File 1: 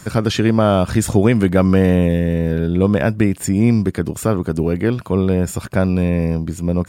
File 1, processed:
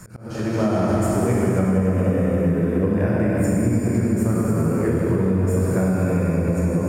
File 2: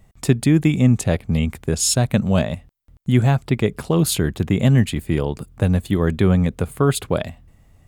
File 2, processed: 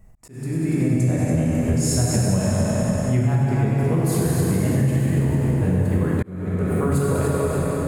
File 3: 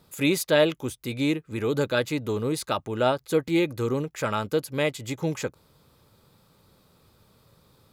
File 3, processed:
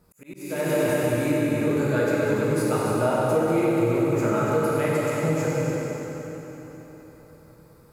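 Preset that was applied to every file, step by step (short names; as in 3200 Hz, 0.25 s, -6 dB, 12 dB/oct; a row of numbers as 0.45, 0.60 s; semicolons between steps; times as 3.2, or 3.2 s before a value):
bell 3500 Hz -14 dB 0.65 oct; on a send: multi-head echo 96 ms, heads all three, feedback 43%, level -11 dB; on the sum: plate-style reverb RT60 4.1 s, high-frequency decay 0.75×, DRR -6 dB; compressor 6:1, threshold -14 dBFS; low shelf 74 Hz +6.5 dB; auto swell 0.476 s; gain -3.5 dB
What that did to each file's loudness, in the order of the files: -3.5, -1.5, +2.5 LU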